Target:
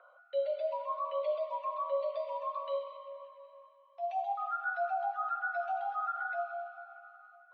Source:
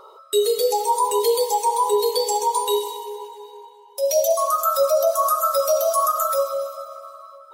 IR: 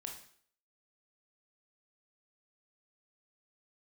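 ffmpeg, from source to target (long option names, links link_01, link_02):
-af "highpass=frequency=260:width_type=q:width=0.5412,highpass=frequency=260:width_type=q:width=1.307,lowpass=frequency=2600:width_type=q:width=0.5176,lowpass=frequency=2600:width_type=q:width=0.7071,lowpass=frequency=2600:width_type=q:width=1.932,afreqshift=140,equalizer=frequency=970:width_type=o:width=1.7:gain=-8,volume=-8.5dB"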